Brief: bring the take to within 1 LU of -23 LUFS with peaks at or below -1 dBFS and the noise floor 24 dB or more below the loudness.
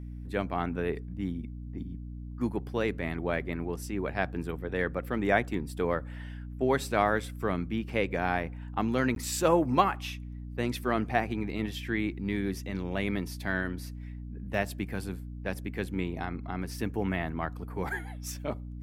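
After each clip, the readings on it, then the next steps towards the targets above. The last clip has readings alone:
dropouts 1; longest dropout 12 ms; hum 60 Hz; harmonics up to 300 Hz; hum level -38 dBFS; loudness -31.5 LUFS; peak -7.5 dBFS; loudness target -23.0 LUFS
-> interpolate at 9.15, 12 ms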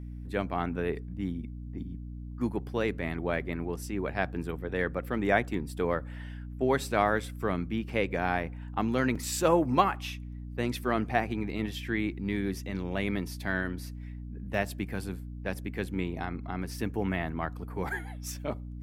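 dropouts 0; hum 60 Hz; harmonics up to 300 Hz; hum level -38 dBFS
-> notches 60/120/180/240/300 Hz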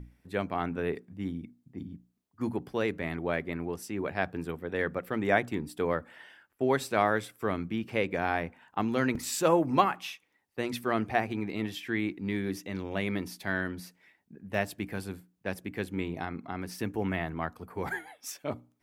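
hum none; loudness -32.0 LUFS; peak -7.5 dBFS; loudness target -23.0 LUFS
-> gain +9 dB; limiter -1 dBFS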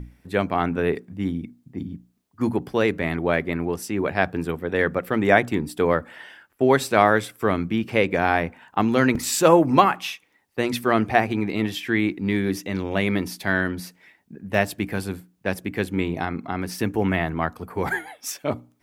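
loudness -23.0 LUFS; peak -1.0 dBFS; noise floor -64 dBFS

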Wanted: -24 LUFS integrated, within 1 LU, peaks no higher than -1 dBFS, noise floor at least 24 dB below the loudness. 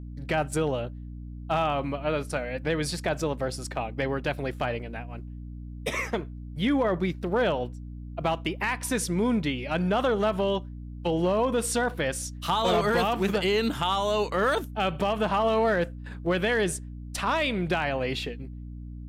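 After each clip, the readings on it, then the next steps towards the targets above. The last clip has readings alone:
clipped 0.4%; flat tops at -17.5 dBFS; hum 60 Hz; harmonics up to 300 Hz; hum level -37 dBFS; loudness -27.5 LUFS; peak -17.5 dBFS; loudness target -24.0 LUFS
-> clip repair -17.5 dBFS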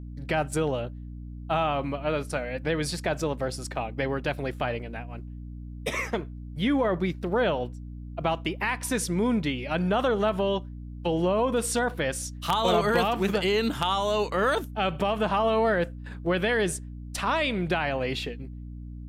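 clipped 0.0%; hum 60 Hz; harmonics up to 300 Hz; hum level -37 dBFS
-> de-hum 60 Hz, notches 5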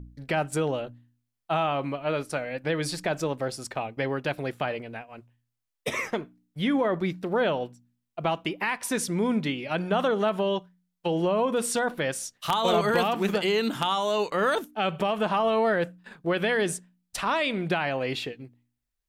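hum none; loudness -27.5 LUFS; peak -8.5 dBFS; loudness target -24.0 LUFS
-> gain +3.5 dB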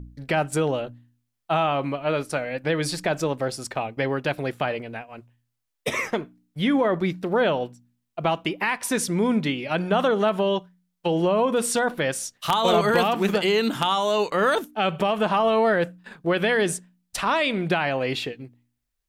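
loudness -24.0 LUFS; peak -5.0 dBFS; noise floor -78 dBFS

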